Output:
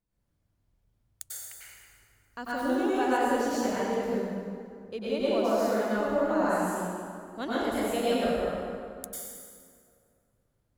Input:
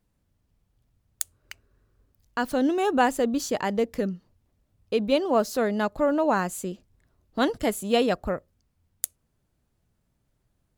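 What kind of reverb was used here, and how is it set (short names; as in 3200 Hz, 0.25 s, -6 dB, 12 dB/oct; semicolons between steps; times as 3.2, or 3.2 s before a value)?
plate-style reverb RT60 2.3 s, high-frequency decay 0.65×, pre-delay 85 ms, DRR -9.5 dB; gain -13 dB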